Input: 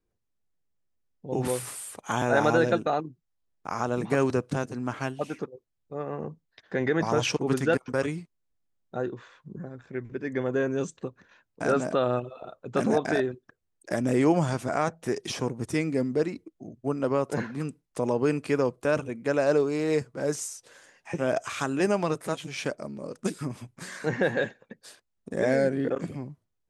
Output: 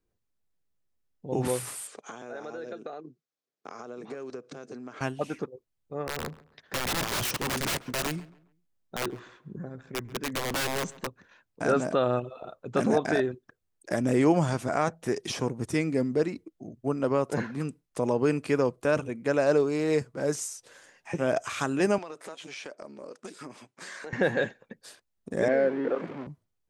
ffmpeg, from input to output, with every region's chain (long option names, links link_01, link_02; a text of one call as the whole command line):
ffmpeg -i in.wav -filter_complex "[0:a]asettb=1/sr,asplit=3[link_01][link_02][link_03];[link_01]atrim=end=1.874[link_04];[link_02]atrim=start=1.87:end=5.01,asetpts=PTS-STARTPTS,afade=type=in:duration=0.004:curve=qsin,afade=type=out:start_time=3.136:duration=0.004:curve=qsin,acompressor=threshold=-34dB:ratio=12:attack=3.2:release=140:knee=1:detection=peak,highpass=frequency=170:width=0.5412,highpass=frequency=170:width=1.3066,equalizer=frequency=180:width_type=q:width=4:gain=-9,equalizer=frequency=290:width_type=q:width=4:gain=-3,equalizer=frequency=430:width_type=q:width=4:gain=5,equalizer=frequency=920:width_type=q:width=4:gain=-7,equalizer=frequency=1900:width_type=q:width=4:gain=-3,equalizer=frequency=2900:width_type=q:width=4:gain=-4,lowpass=frequency=7000:width=0.5412,lowpass=frequency=7000:width=1.3066[link_05];[link_03]atrim=start=5.006[link_06];[link_04][link_05]acrossfade=duration=0.004:curve1=hsin:curve2=qsin[link_07];[link_07][link_06]acrossfade=duration=0.004:curve1=qsin:curve2=hsin,asettb=1/sr,asplit=3[link_08][link_09][link_10];[link_08]atrim=end=6.054[link_11];[link_09]atrim=start=6.05:end=11.07,asetpts=PTS-STARTPTS,afade=type=in:duration=0.004:curve=qsin,afade=type=out:start_time=5.016:duration=0.004:curve=qsin,aeval=exprs='(mod(15.8*val(0)+1,2)-1)/15.8':channel_layout=same,asplit=2[link_12][link_13];[link_13]adelay=137,lowpass=frequency=2600:poles=1,volume=-19.5dB,asplit=2[link_14][link_15];[link_15]adelay=137,lowpass=frequency=2600:poles=1,volume=0.32,asplit=2[link_16][link_17];[link_17]adelay=137,lowpass=frequency=2600:poles=1,volume=0.32[link_18];[link_12][link_14][link_16][link_18]amix=inputs=4:normalize=0,atrim=end_sample=221382[link_19];[link_10]atrim=start=11.066[link_20];[link_11][link_19]acrossfade=duration=0.004:curve1=hsin:curve2=qsin[link_21];[link_21][link_20]acrossfade=duration=0.004:curve1=qsin:curve2=hsin,asettb=1/sr,asplit=3[link_22][link_23][link_24];[link_22]atrim=end=21.984[link_25];[link_23]atrim=start=21.98:end=24.13,asetpts=PTS-STARTPTS,afade=type=in:duration=0.004:curve=qsin,afade=type=out:start_time=2.146:duration=0.004:curve=qsin,highpass=360,lowpass=7800,acompressor=threshold=-37dB:ratio=5:attack=3.2:release=140:knee=1:detection=peak[link_26];[link_24]atrim=start=24.126[link_27];[link_25][link_26]acrossfade=duration=0.004:curve1=hsin:curve2=qsin[link_28];[link_28][link_27]acrossfade=duration=0.004:curve1=qsin:curve2=hsin,asettb=1/sr,asplit=3[link_29][link_30][link_31];[link_29]atrim=end=25.484[link_32];[link_30]atrim=start=25.48:end=26.27,asetpts=PTS-STARTPTS,afade=type=in:duration=0.004:curve=qsin,afade=type=out:start_time=0.786:duration=0.004:curve=qsin,aeval=exprs='val(0)+0.5*0.0211*sgn(val(0))':channel_layout=same,highpass=310,lowpass=2100[link_33];[link_31]atrim=start=26.266[link_34];[link_32][link_33]acrossfade=duration=0.004:curve1=hsin:curve2=qsin[link_35];[link_35][link_34]acrossfade=duration=0.004:curve1=qsin:curve2=hsin" out.wav